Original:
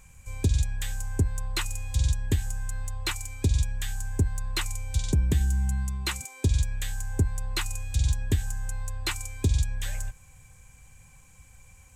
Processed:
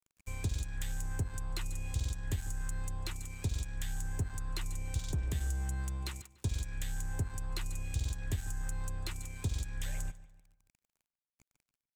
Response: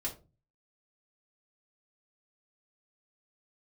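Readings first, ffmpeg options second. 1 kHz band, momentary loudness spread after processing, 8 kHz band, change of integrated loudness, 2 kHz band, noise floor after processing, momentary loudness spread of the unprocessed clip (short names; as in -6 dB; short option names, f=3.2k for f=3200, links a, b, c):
-7.5 dB, 4 LU, -8.5 dB, -9.5 dB, -9.5 dB, under -85 dBFS, 8 LU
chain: -filter_complex "[0:a]acrossover=split=150|550[a][b][c];[a]acompressor=threshold=-31dB:ratio=4[d];[b]acompressor=threshold=-50dB:ratio=4[e];[c]acompressor=threshold=-43dB:ratio=4[f];[d][e][f]amix=inputs=3:normalize=0,aeval=exprs='sgn(val(0))*max(abs(val(0))-0.00668,0)':c=same,asplit=2[g][h];[h]adelay=146,lowpass=f=4.4k:p=1,volume=-17dB,asplit=2[i][j];[j]adelay=146,lowpass=f=4.4k:p=1,volume=0.43,asplit=2[k][l];[l]adelay=146,lowpass=f=4.4k:p=1,volume=0.43,asplit=2[m][n];[n]adelay=146,lowpass=f=4.4k:p=1,volume=0.43[o];[g][i][k][m][o]amix=inputs=5:normalize=0"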